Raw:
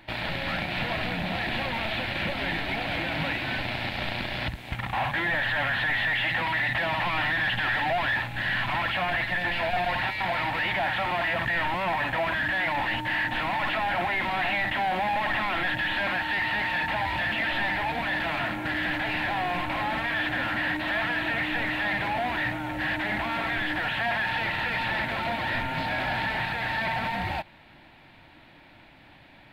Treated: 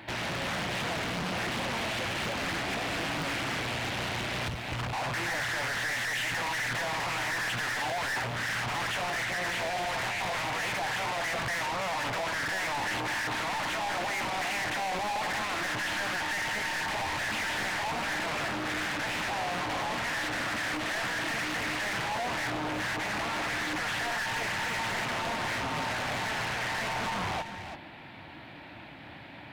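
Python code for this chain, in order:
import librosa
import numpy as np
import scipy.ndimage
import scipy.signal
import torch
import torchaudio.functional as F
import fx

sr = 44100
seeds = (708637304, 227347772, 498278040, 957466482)

p1 = scipy.signal.sosfilt(scipy.signal.butter(2, 78.0, 'highpass', fs=sr, output='sos'), x)
p2 = fx.high_shelf(p1, sr, hz=3400.0, db=-4.0)
p3 = 10.0 ** (-37.5 / 20.0) * np.tanh(p2 / 10.0 ** (-37.5 / 20.0))
p4 = p3 + fx.echo_single(p3, sr, ms=335, db=-9.0, dry=0)
p5 = fx.doppler_dist(p4, sr, depth_ms=0.83)
y = p5 * librosa.db_to_amplitude(6.5)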